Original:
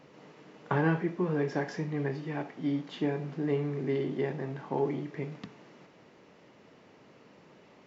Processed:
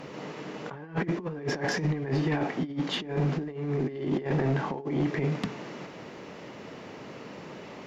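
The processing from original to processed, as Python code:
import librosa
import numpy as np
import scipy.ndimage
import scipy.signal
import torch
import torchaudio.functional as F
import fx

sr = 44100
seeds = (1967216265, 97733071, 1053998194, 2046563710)

y = fx.over_compress(x, sr, threshold_db=-36.0, ratio=-0.5)
y = fx.fold_sine(y, sr, drive_db=5, ceiling_db=-20.5)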